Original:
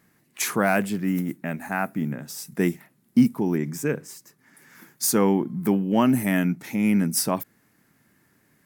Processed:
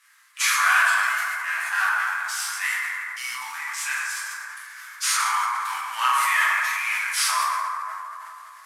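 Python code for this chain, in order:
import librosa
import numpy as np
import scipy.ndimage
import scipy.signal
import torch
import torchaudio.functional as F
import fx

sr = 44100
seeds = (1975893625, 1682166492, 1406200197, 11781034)

y = fx.cvsd(x, sr, bps=64000)
y = scipy.signal.sosfilt(scipy.signal.ellip(4, 1.0, 60, 1100.0, 'highpass', fs=sr, output='sos'), y)
y = fx.rev_fdn(y, sr, rt60_s=2.8, lf_ratio=1.0, hf_ratio=0.35, size_ms=92.0, drr_db=-9.0)
y = fx.sustainer(y, sr, db_per_s=20.0)
y = y * 10.0 ** (3.0 / 20.0)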